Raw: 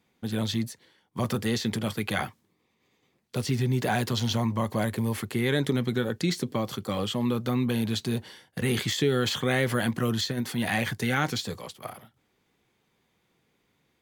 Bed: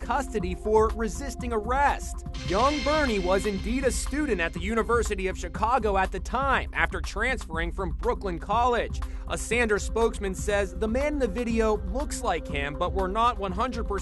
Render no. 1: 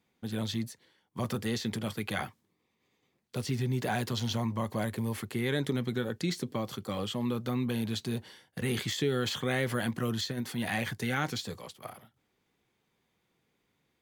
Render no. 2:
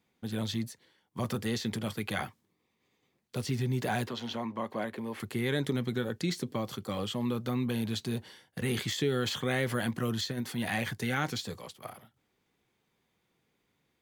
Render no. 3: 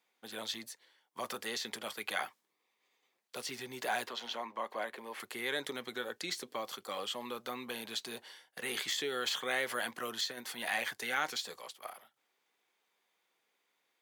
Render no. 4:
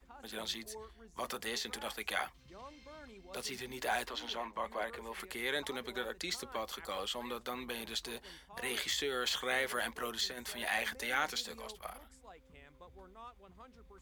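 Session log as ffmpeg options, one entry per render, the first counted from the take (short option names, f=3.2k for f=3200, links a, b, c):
-af "volume=-5dB"
-filter_complex "[0:a]asettb=1/sr,asplit=3[a][b][c];[a]atrim=end=4.074[d];[b]atrim=start=4.07:end=5.2,asetpts=PTS-STARTPTS,afade=t=in:d=0.004:c=qsin,afade=t=out:st=1.126:d=0.004:c=qsin,acrossover=split=200 3700:gain=0.1 1 0.224[e][f][g];[e][f][g]amix=inputs=3:normalize=0[h];[c]atrim=start=5.196[i];[d][h]acrossfade=d=0.004:c1=hsin:c2=qsin[j];[j][i]acrossfade=d=0.004:c1=qsin:c2=hsin"
-af "highpass=610"
-filter_complex "[1:a]volume=-28.5dB[a];[0:a][a]amix=inputs=2:normalize=0"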